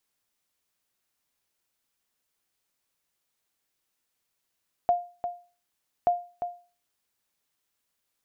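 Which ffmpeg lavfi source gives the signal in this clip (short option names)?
-f lavfi -i "aevalsrc='0.178*(sin(2*PI*704*mod(t,1.18))*exp(-6.91*mod(t,1.18)/0.36)+0.355*sin(2*PI*704*max(mod(t,1.18)-0.35,0))*exp(-6.91*max(mod(t,1.18)-0.35,0)/0.36))':d=2.36:s=44100"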